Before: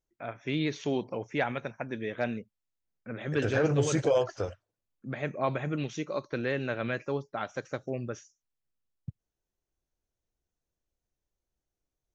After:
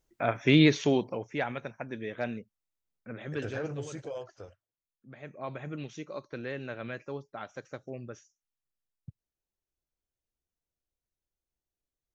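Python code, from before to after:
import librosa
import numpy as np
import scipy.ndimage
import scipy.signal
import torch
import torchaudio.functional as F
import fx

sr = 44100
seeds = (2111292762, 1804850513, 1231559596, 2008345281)

y = fx.gain(x, sr, db=fx.line((0.63, 10.0), (1.29, -2.5), (3.11, -2.5), (4.0, -14.0), (5.07, -14.0), (5.67, -6.5)))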